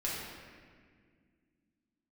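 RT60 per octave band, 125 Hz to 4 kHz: 2.7, 3.2, 2.1, 1.6, 1.8, 1.3 s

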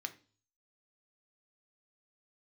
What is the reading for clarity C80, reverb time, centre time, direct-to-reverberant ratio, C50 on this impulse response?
21.5 dB, 0.40 s, 5 ms, 6.5 dB, 16.0 dB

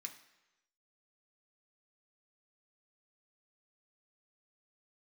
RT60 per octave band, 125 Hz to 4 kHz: 0.95, 0.90, 1.0, 1.0, 1.0, 0.95 s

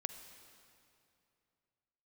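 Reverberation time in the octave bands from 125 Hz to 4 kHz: 3.1, 2.8, 2.7, 2.6, 2.4, 2.2 s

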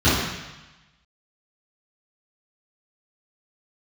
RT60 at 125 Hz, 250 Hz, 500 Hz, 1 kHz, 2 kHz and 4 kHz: 1.2, 1.0, 0.90, 1.2, 1.2, 1.2 s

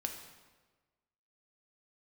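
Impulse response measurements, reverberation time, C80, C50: 1.3 s, 8.0 dB, 6.5 dB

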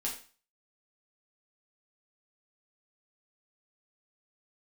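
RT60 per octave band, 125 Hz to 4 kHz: 0.40, 0.35, 0.35, 0.40, 0.40, 0.40 s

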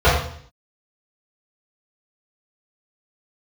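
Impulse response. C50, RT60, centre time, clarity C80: 2.5 dB, 0.55 s, 49 ms, 6.0 dB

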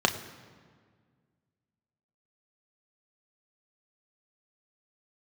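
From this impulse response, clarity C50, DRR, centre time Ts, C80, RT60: 12.0 dB, 4.5 dB, 16 ms, 13.0 dB, 1.8 s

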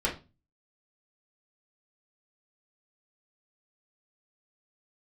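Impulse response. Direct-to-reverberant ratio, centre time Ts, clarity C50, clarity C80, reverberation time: -5.0 dB, 21 ms, 10.0 dB, 17.5 dB, 0.30 s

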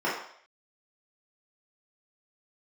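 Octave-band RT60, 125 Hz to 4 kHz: 0.40, 0.45, 0.60, 0.60, 0.65, 0.65 s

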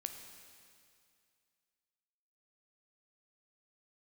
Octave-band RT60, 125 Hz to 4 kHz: 2.3, 2.3, 2.3, 2.3, 2.3, 2.3 s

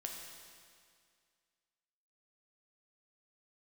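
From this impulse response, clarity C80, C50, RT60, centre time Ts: 4.0 dB, 2.5 dB, 2.1 s, 76 ms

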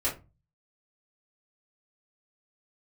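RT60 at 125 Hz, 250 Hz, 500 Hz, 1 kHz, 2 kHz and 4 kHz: 0.60, 0.40, 0.30, 0.25, 0.20, 0.15 s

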